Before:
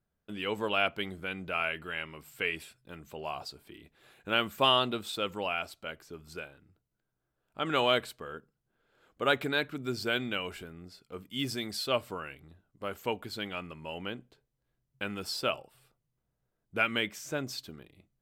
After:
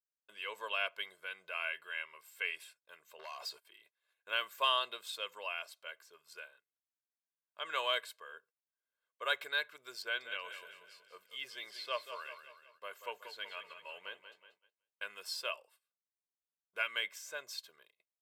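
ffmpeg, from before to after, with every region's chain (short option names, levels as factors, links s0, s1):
-filter_complex "[0:a]asettb=1/sr,asplit=3[s0][s1][s2];[s0]atrim=end=3.194[s3];[s1]atrim=start=3.19:end=3.65,asetpts=PTS-STARTPTS,afade=t=in:d=0.004:c=qsin,afade=t=out:st=0.456:d=0.004:c=qsin,agate=range=0.0562:threshold=0.00178:ratio=16:release=100:detection=peak,acompressor=threshold=0.00891:ratio=12:attack=3.2:release=140:knee=1:detection=peak,aeval=exprs='0.0237*sin(PI/2*2.24*val(0)/0.0237)':c=same[s4];[s2]atrim=start=3.646[s5];[s3][s4]acrossfade=d=0.004:c1=hsin:c2=qsin[s6];[s6][s5]acrossfade=d=0.004:c1=qsin:c2=hsin,asettb=1/sr,asplit=3[s7][s8][s9];[s7]atrim=end=10.024[s10];[s8]atrim=start=10.02:end=15.02,asetpts=PTS-STARTPTS,afade=t=in:d=0.004:c=qsin,afade=t=out:st=4.996:d=0.004:c=qsin,acrossover=split=3900[s11][s12];[s12]acompressor=threshold=0.00224:ratio=4:attack=1:release=60[s13];[s11][s13]amix=inputs=2:normalize=0,aecho=1:1:186|372|558|744|930:0.316|0.152|0.0729|0.035|0.0168,atrim=end_sample=220500[s14];[s9]atrim=start=15.016[s15];[s10][s14]acrossfade=d=0.004:c1=hsin:c2=qsin[s16];[s16][s15]acrossfade=d=0.004:c1=qsin:c2=hsin,agate=range=0.126:threshold=0.00158:ratio=16:detection=peak,highpass=910,aecho=1:1:1.9:0.7,volume=0.501"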